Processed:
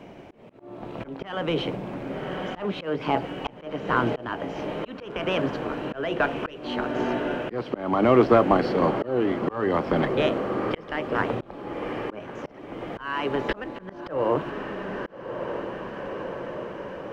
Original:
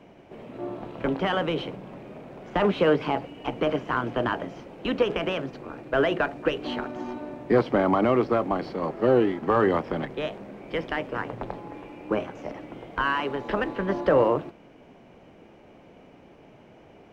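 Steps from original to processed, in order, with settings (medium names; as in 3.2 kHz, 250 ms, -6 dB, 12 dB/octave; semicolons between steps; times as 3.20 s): echo that smears into a reverb 1146 ms, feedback 60%, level -13 dB; slow attack 501 ms; trim +6.5 dB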